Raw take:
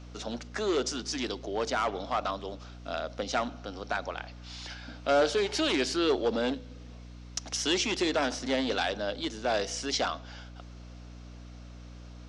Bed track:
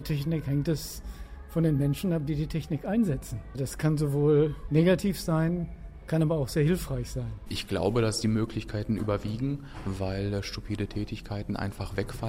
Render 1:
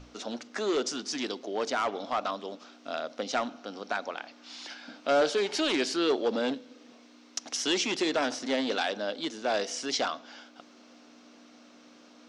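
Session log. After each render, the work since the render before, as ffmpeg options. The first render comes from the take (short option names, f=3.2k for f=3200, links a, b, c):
-af "bandreject=f=60:t=h:w=6,bandreject=f=120:t=h:w=6,bandreject=f=180:t=h:w=6"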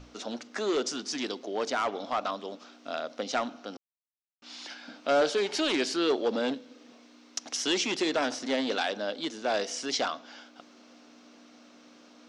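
-filter_complex "[0:a]asplit=3[a][b][c];[a]atrim=end=3.77,asetpts=PTS-STARTPTS,afade=t=out:st=3.766:d=0.004:c=hsin[d];[b]atrim=start=3.77:end=4.42,asetpts=PTS-STARTPTS,volume=0[e];[c]atrim=start=4.42,asetpts=PTS-STARTPTS,afade=t=in:d=0.004:c=hsin[f];[d][e][f]concat=n=3:v=0:a=1"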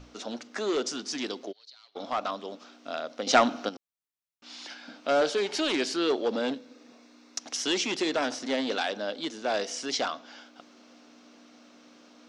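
-filter_complex "[0:a]asplit=3[a][b][c];[a]afade=t=out:st=1.51:d=0.02[d];[b]bandpass=f=4.2k:t=q:w=15,afade=t=in:st=1.51:d=0.02,afade=t=out:st=1.95:d=0.02[e];[c]afade=t=in:st=1.95:d=0.02[f];[d][e][f]amix=inputs=3:normalize=0,asettb=1/sr,asplit=3[g][h][i];[g]atrim=end=6.584[j];[h]atrim=start=6.58:end=7.4,asetpts=PTS-STARTPTS,afade=t=in:d=0.004:c=qsin,afade=t=out:st=0.816:d=0.004:c=qsin,bandreject=f=3.1k:w=7[k];[i]atrim=start=7.396[l];[j][k]acrossfade=d=0.004:c1=hsin:c2=qsin[m];[m][l]acrossfade=d=0.004:c1=qsin:c2=hsin,asplit=3[n][o][p];[n]atrim=end=3.272[q];[o]atrim=start=3.268:end=3.692,asetpts=PTS-STARTPTS,volume=9.5dB[r];[p]atrim=start=3.688[s];[q][r]acrossfade=d=0.004:c1=hsin:c2=hsin[t];[t][s]acrossfade=d=0.004:c1=hsin:c2=hsin"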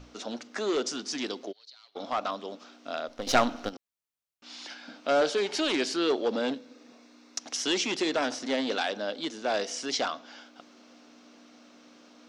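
-filter_complex "[0:a]asettb=1/sr,asplit=3[a][b][c];[a]atrim=end=3.084[d];[b]atrim=start=3.08:end=3.73,asetpts=PTS-STARTPTS,afade=t=in:d=0.004:c=qsin,afade=t=out:st=0.646:d=0.004:c=qsin,aeval=exprs='if(lt(val(0),0),0.447*val(0),val(0))':c=same[e];[c]atrim=start=3.726[f];[d][e]acrossfade=d=0.004:c1=hsin:c2=qsin[g];[g][f]acrossfade=d=0.004:c1=qsin:c2=hsin"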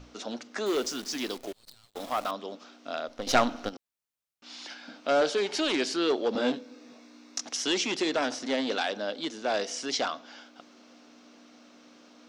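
-filter_complex "[0:a]asettb=1/sr,asplit=3[a][b][c];[a]atrim=end=0.664[d];[b]atrim=start=0.66:end=2.31,asetpts=PTS-STARTPTS,afade=t=in:d=0.004:c=qsin,afade=t=out:st=1.646:d=0.004:c=qsin,acrusher=bits=8:dc=4:mix=0:aa=0.000001[e];[c]atrim=start=2.306[f];[d][e]acrossfade=d=0.004:c1=hsin:c2=qsin[g];[g][f]acrossfade=d=0.004:c1=qsin:c2=hsin,asettb=1/sr,asplit=3[h][i][j];[h]atrim=end=6.334[k];[i]atrim=start=6.33:end=7.49,asetpts=PTS-STARTPTS,afade=t=in:d=0.004:c=qsin,afade=t=out:st=1.156:d=0.004:c=qsin,asplit=2[l][m];[m]adelay=20,volume=-2.5dB[n];[l][n]amix=inputs=2:normalize=0,atrim=end_sample=51156[o];[j]atrim=start=7.486[p];[k][o]acrossfade=d=0.004:c1=hsin:c2=qsin[q];[q][p]acrossfade=d=0.004:c1=qsin:c2=hsin"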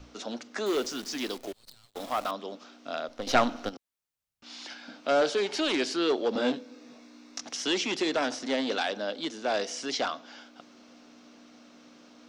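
-filter_complex "[0:a]acrossover=split=140|4800[a][b][c];[a]acompressor=mode=upward:threshold=-58dB:ratio=2.5[d];[c]alimiter=level_in=7.5dB:limit=-24dB:level=0:latency=1:release=111,volume=-7.5dB[e];[d][b][e]amix=inputs=3:normalize=0"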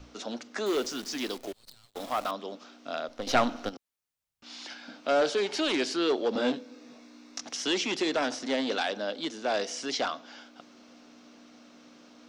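-af "asoftclip=type=tanh:threshold=-11.5dB"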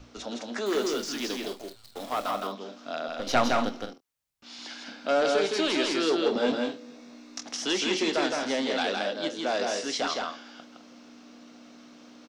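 -filter_complex "[0:a]asplit=2[a][b];[b]adelay=25,volume=-12dB[c];[a][c]amix=inputs=2:normalize=0,aecho=1:1:163.3|209.9:0.708|0.282"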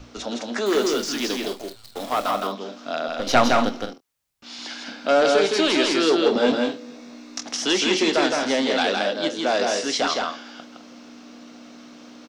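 -af "volume=6.5dB"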